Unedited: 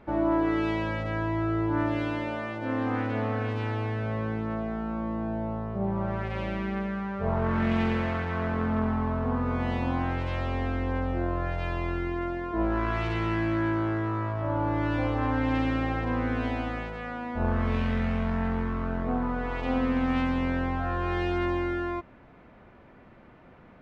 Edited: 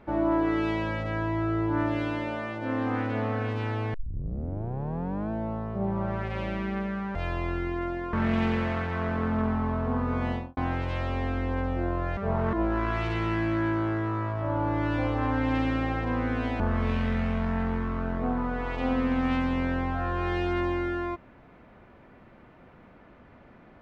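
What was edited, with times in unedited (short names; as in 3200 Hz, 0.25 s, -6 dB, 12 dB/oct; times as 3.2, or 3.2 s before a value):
3.94 tape start 1.37 s
7.15–7.51 swap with 11.55–12.53
9.65–9.95 studio fade out
16.6–17.45 cut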